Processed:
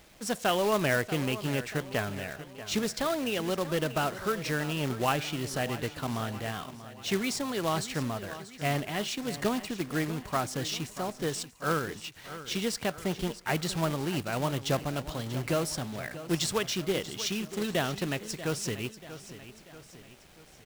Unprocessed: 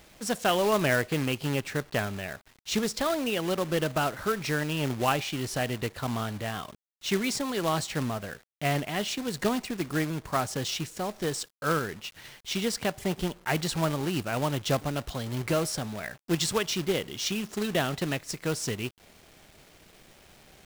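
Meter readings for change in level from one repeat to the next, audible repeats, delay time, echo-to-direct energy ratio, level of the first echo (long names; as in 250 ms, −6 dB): −6.0 dB, 3, 637 ms, −13.0 dB, −14.0 dB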